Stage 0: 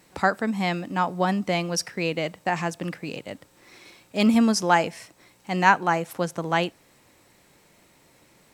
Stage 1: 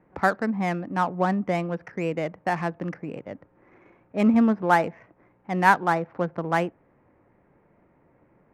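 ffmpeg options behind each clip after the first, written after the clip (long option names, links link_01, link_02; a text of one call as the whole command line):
ffmpeg -i in.wav -filter_complex "[0:a]lowpass=frequency=2200:width=0.5412,lowpass=frequency=2200:width=1.3066,acrossover=split=600[link_01][link_02];[link_02]adynamicsmooth=sensitivity=5.5:basefreq=1500[link_03];[link_01][link_03]amix=inputs=2:normalize=0" out.wav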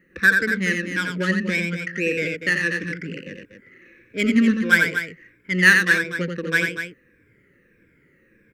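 ffmpeg -i in.wav -filter_complex "[0:a]afftfilt=real='re*pow(10,13/40*sin(2*PI*(1.7*log(max(b,1)*sr/1024/100)/log(2)-(-1.6)*(pts-256)/sr)))':imag='im*pow(10,13/40*sin(2*PI*(1.7*log(max(b,1)*sr/1024/100)/log(2)-(-1.6)*(pts-256)/sr)))':win_size=1024:overlap=0.75,firequalizer=gain_entry='entry(500,0);entry(720,-30);entry(1600,11)':delay=0.05:min_phase=1,asplit=2[link_01][link_02];[link_02]aecho=0:1:87.46|242:0.562|0.355[link_03];[link_01][link_03]amix=inputs=2:normalize=0,volume=-1.5dB" out.wav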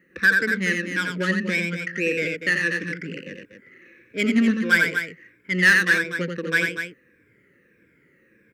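ffmpeg -i in.wav -af "highpass=frequency=140:poles=1,asoftclip=type=tanh:threshold=-7.5dB" out.wav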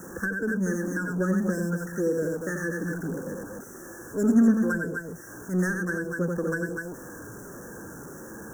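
ffmpeg -i in.wav -filter_complex "[0:a]aeval=exprs='val(0)+0.5*0.02*sgn(val(0))':channel_layout=same,asuperstop=centerf=3100:order=20:qfactor=0.76,acrossover=split=500[link_01][link_02];[link_02]acompressor=threshold=-31dB:ratio=5[link_03];[link_01][link_03]amix=inputs=2:normalize=0" out.wav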